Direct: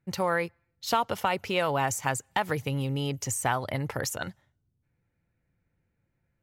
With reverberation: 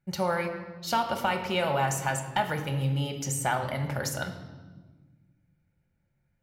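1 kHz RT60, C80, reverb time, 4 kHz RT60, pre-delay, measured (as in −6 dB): 1.2 s, 10.5 dB, 1.4 s, 1.1 s, 3 ms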